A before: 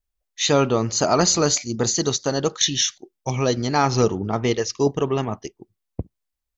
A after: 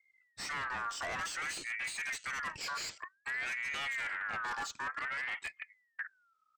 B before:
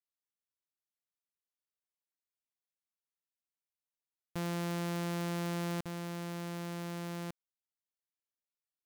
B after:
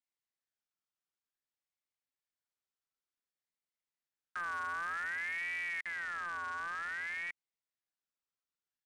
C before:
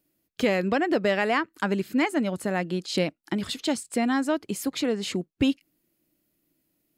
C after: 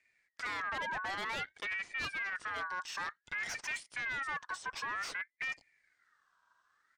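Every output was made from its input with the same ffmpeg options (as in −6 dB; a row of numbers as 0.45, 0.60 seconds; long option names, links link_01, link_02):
-filter_complex "[0:a]asplit=2[link_01][link_02];[link_02]aeval=exprs='(mod(7.08*val(0)+1,2)-1)/7.08':channel_layout=same,volume=-10dB[link_03];[link_01][link_03]amix=inputs=2:normalize=0,lowshelf=frequency=210:gain=10,areverse,acompressor=threshold=-25dB:ratio=6,areverse,aresample=16000,aresample=44100,asoftclip=type=tanh:threshold=-31dB,acrossover=split=5600[link_04][link_05];[link_05]acompressor=threshold=-46dB:ratio=4:attack=1:release=60[link_06];[link_04][link_06]amix=inputs=2:normalize=0,aeval=exprs='val(0)*sin(2*PI*1700*n/s+1700*0.25/0.54*sin(2*PI*0.54*n/s))':channel_layout=same,volume=-1dB"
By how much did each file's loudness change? −16.5, +0.5, −11.0 LU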